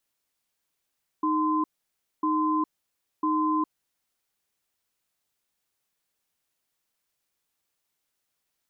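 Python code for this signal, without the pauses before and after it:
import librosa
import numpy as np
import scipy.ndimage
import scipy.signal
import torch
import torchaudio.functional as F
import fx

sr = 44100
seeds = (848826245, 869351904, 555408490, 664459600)

y = fx.cadence(sr, length_s=2.73, low_hz=310.0, high_hz=1030.0, on_s=0.41, off_s=0.59, level_db=-24.5)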